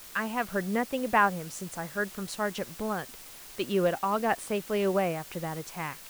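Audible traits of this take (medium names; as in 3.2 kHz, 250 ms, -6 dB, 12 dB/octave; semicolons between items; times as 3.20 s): tremolo triangle 1.9 Hz, depth 35%; a quantiser's noise floor 8-bit, dither triangular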